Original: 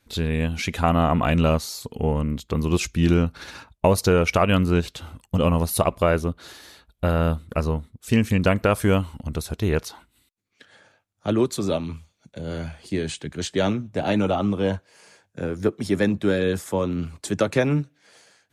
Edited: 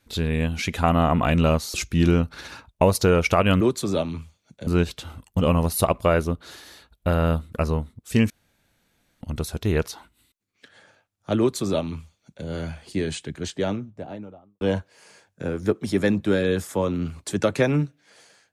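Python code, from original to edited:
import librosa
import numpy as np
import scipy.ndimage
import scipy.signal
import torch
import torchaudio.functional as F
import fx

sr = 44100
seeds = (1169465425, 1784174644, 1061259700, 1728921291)

y = fx.studio_fade_out(x, sr, start_s=13.05, length_s=1.53)
y = fx.edit(y, sr, fx.cut(start_s=1.74, length_s=1.03),
    fx.room_tone_fill(start_s=8.27, length_s=0.91),
    fx.duplicate(start_s=11.36, length_s=1.06, to_s=4.64), tone=tone)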